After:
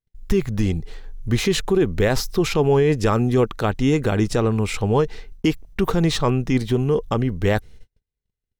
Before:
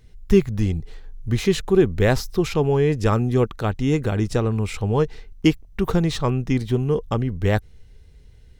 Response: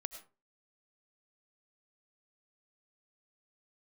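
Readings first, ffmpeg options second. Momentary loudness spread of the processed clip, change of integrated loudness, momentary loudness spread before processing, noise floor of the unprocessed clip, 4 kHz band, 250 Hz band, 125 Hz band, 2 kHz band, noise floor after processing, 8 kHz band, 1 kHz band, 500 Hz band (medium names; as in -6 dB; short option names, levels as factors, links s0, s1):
6 LU, +1.0 dB, 6 LU, -48 dBFS, +3.5 dB, +0.5 dB, -0.5 dB, +2.0 dB, -84 dBFS, +4.5 dB, +2.5 dB, +1.0 dB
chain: -af "agate=range=0.01:threshold=0.01:ratio=16:detection=peak,equalizer=f=66:t=o:w=2.5:g=-6,alimiter=level_in=4.47:limit=0.891:release=50:level=0:latency=1,volume=0.398"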